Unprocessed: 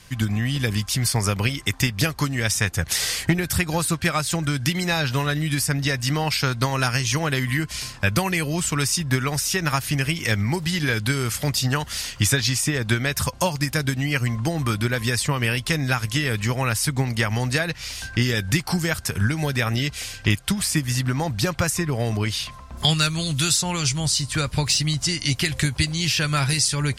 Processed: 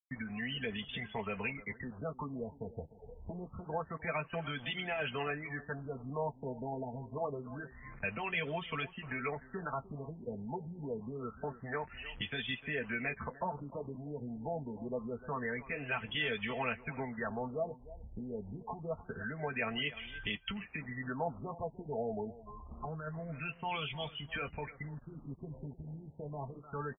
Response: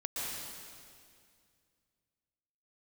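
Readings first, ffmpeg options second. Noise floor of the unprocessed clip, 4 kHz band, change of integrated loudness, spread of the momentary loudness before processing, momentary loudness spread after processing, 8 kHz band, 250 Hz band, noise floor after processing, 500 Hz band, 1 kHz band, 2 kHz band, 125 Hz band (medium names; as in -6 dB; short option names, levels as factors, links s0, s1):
-40 dBFS, -20.0 dB, -17.0 dB, 4 LU, 10 LU, under -40 dB, -17.0 dB, -57 dBFS, -10.0 dB, -12.0 dB, -14.5 dB, -22.5 dB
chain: -filter_complex "[0:a]afftdn=nr=27:nf=-31,aecho=1:1:4.5:0.69,acrossover=split=140|770|2400[s0][s1][s2][s3];[s2]acompressor=threshold=0.0112:ratio=8[s4];[s0][s1][s4][s3]amix=inputs=4:normalize=0,alimiter=limit=0.133:level=0:latency=1:release=10,acrossover=split=500|3000[s5][s6][s7];[s5]acompressor=threshold=0.00891:ratio=5[s8];[s8][s6][s7]amix=inputs=3:normalize=0,acrusher=bits=7:mix=0:aa=0.000001,flanger=delay=7.6:depth=2.1:regen=-45:speed=0.47:shape=triangular,aecho=1:1:302:0.141,aresample=32000,aresample=44100,afftfilt=real='re*lt(b*sr/1024,910*pow(3600/910,0.5+0.5*sin(2*PI*0.26*pts/sr)))':imag='im*lt(b*sr/1024,910*pow(3600/910,0.5+0.5*sin(2*PI*0.26*pts/sr)))':win_size=1024:overlap=0.75"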